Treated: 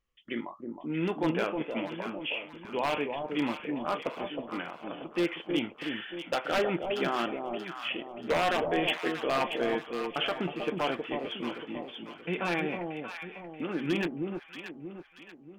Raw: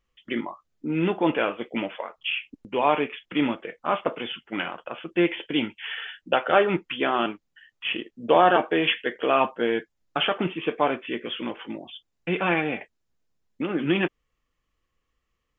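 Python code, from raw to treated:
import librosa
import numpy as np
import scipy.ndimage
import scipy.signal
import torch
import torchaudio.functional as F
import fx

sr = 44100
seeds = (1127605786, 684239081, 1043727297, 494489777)

y = fx.high_shelf(x, sr, hz=2800.0, db=-10.5, at=(3.97, 5.03))
y = 10.0 ** (-13.5 / 20.0) * (np.abs((y / 10.0 ** (-13.5 / 20.0) + 3.0) % 4.0 - 2.0) - 1.0)
y = fx.echo_alternate(y, sr, ms=316, hz=900.0, feedback_pct=63, wet_db=-4)
y = F.gain(torch.from_numpy(y), -6.5).numpy()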